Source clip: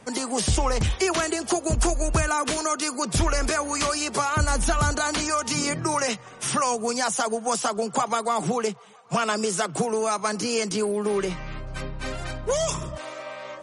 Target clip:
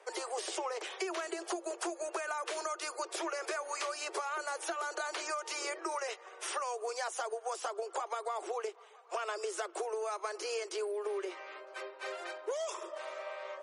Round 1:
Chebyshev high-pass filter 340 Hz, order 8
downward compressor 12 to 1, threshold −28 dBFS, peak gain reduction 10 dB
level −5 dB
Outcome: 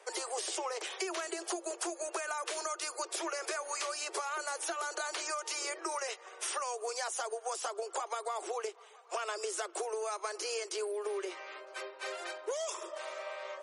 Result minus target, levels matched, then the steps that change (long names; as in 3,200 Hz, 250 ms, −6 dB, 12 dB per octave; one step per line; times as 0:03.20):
8,000 Hz band +4.0 dB
add after Chebyshev high-pass filter: high-shelf EQ 3,900 Hz −8 dB